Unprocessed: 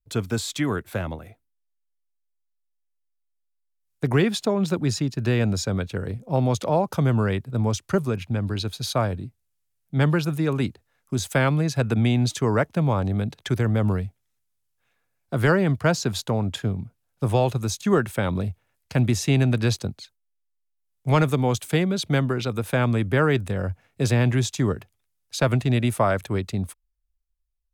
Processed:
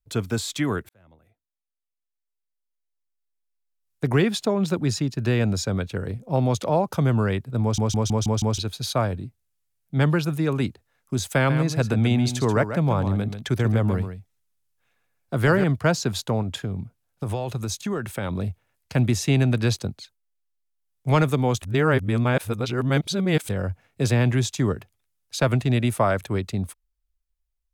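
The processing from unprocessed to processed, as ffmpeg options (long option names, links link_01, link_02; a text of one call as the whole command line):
ffmpeg -i in.wav -filter_complex "[0:a]asettb=1/sr,asplit=3[link_01][link_02][link_03];[link_01]atrim=end=11.364[link_04];[link_02]atrim=start=11.36:end=15.64,asetpts=PTS-STARTPTS,afade=type=in:duration=0.004:curve=qsin,afade=type=out:start_time=4.276:duration=0.004:curve=qsin,aecho=1:1:136:0.335,atrim=end_sample=188748[link_05];[link_03]atrim=start=15.636[link_06];[link_04][link_05]acrossfade=duration=0.004:curve1=hsin:curve2=qsin[link_07];[link_07][link_06]acrossfade=duration=0.004:curve1=qsin:curve2=hsin,asettb=1/sr,asplit=3[link_08][link_09][link_10];[link_08]atrim=end=16.424[link_11];[link_09]atrim=start=16.42:end=18.42,asetpts=PTS-STARTPTS,afade=type=in:duration=0.004:curve=qsin,afade=type=out:start_time=1.996:duration=0.004:curve=qsin,acompressor=threshold=-23dB:ratio=6:attack=3.2:release=140:knee=1:detection=peak[link_12];[link_10]atrim=start=18.416[link_13];[link_11][link_12]acrossfade=duration=0.004:curve1=hsin:curve2=qsin[link_14];[link_14][link_13]acrossfade=duration=0.004:curve1=qsin:curve2=hsin,asplit=10[link_15][link_16][link_17][link_18][link_19][link_20][link_21][link_22][link_23][link_24];[link_15]atrim=end=0.89,asetpts=PTS-STARTPTS,afade=type=out:start_time=0.886:duration=0.004:curve=hsin[link_25];[link_16]atrim=start=0.89:end=7.782,asetpts=PTS-STARTPTS,afade=type=in:duration=3.18[link_26];[link_17]atrim=start=7.618:end=7.782[link_27];[link_18]atrim=start=7.618:end=7.782[link_28];[link_19]atrim=start=7.618:end=7.782[link_29];[link_20]atrim=start=7.618:end=7.782[link_30];[link_21]atrim=start=7.618:end=7.782[link_31];[link_22]atrim=start=8.578:end=21.622[link_32];[link_23]atrim=start=21.618:end=23.492,asetpts=PTS-STARTPTS,areverse[link_33];[link_24]atrim=start=23.488[link_34];[link_25][link_26]concat=n=2:v=0:a=1[link_35];[link_35][link_27]acrossfade=duration=0.004:curve1=hsin:curve2=hsin[link_36];[link_36][link_28]acrossfade=duration=0.004:curve1=hsin:curve2=hsin[link_37];[link_37][link_29]acrossfade=duration=0.004:curve1=hsin:curve2=hsin[link_38];[link_38][link_30]acrossfade=duration=0.004:curve1=hsin:curve2=hsin[link_39];[link_39][link_31]acrossfade=duration=0.004:curve1=hsin:curve2=hsin[link_40];[link_40][link_32]acrossfade=duration=0.004:curve1=hsin:curve2=hsin[link_41];[link_41][link_33]acrossfade=duration=0.004:curve1=hsin:curve2=hsin[link_42];[link_42][link_34]acrossfade=duration=0.004:curve1=hsin:curve2=hsin" out.wav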